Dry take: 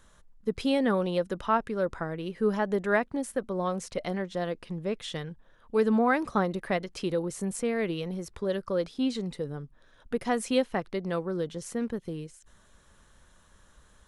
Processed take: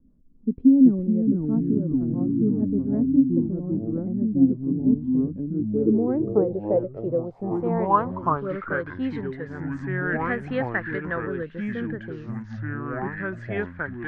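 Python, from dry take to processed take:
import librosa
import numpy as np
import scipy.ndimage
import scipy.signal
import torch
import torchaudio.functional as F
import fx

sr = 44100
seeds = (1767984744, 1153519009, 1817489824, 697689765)

y = fx.rotary_switch(x, sr, hz=6.3, then_hz=0.65, switch_at_s=5.11)
y = fx.echo_pitch(y, sr, ms=258, semitones=-4, count=3, db_per_echo=-3.0)
y = fx.filter_sweep_lowpass(y, sr, from_hz=260.0, to_hz=1700.0, start_s=5.38, end_s=8.98, q=6.5)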